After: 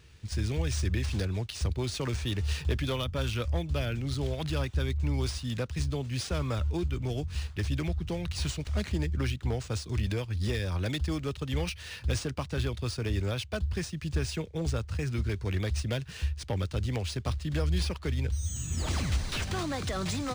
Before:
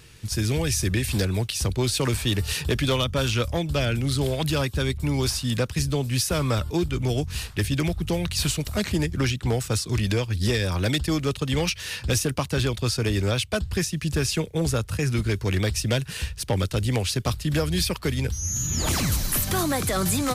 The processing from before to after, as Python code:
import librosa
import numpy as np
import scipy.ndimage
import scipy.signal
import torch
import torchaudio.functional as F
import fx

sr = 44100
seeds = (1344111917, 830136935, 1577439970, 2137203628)

y = fx.peak_eq(x, sr, hz=72.0, db=13.5, octaves=0.36)
y = fx.notch(y, sr, hz=5500.0, q=26.0)
y = np.interp(np.arange(len(y)), np.arange(len(y))[::3], y[::3])
y = y * 10.0 ** (-8.5 / 20.0)